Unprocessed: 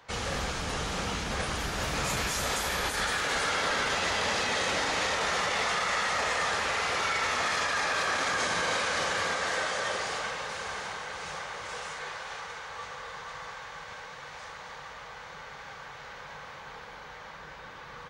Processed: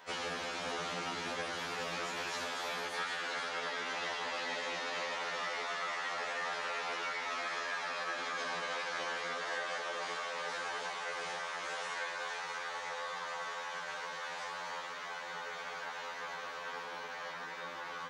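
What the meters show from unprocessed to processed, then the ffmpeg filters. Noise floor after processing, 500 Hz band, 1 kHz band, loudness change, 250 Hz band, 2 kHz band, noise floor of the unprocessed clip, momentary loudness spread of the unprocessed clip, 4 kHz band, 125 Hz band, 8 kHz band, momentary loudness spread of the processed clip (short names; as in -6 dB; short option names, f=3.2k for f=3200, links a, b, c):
-44 dBFS, -6.5 dB, -6.5 dB, -8.5 dB, -10.0 dB, -7.0 dB, -45 dBFS, 16 LU, -8.0 dB, -16.5 dB, -12.0 dB, 5 LU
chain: -filter_complex "[0:a]acrossover=split=5500[a][b];[b]acompressor=threshold=-53dB:ratio=4:attack=1:release=60[c];[a][c]amix=inputs=2:normalize=0,highpass=250,acompressor=threshold=-38dB:ratio=6,afftfilt=real='re*2*eq(mod(b,4),0)':imag='im*2*eq(mod(b,4),0)':win_size=2048:overlap=0.75,volume=4.5dB"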